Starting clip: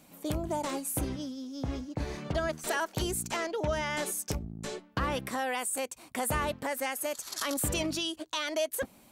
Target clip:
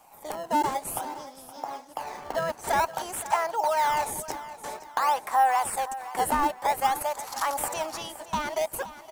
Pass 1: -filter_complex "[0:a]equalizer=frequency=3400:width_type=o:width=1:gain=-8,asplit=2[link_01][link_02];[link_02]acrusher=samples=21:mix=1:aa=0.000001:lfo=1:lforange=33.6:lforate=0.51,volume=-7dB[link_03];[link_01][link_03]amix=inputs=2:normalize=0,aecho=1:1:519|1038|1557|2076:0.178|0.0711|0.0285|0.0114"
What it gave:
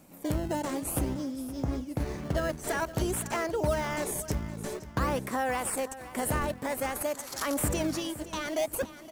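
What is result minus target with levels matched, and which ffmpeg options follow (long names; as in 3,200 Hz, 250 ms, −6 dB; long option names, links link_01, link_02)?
1,000 Hz band −7.0 dB
-filter_complex "[0:a]highpass=frequency=840:width_type=q:width=5.2,equalizer=frequency=3400:width_type=o:width=1:gain=-8,asplit=2[link_01][link_02];[link_02]acrusher=samples=21:mix=1:aa=0.000001:lfo=1:lforange=33.6:lforate=0.51,volume=-7dB[link_03];[link_01][link_03]amix=inputs=2:normalize=0,aecho=1:1:519|1038|1557|2076:0.178|0.0711|0.0285|0.0114"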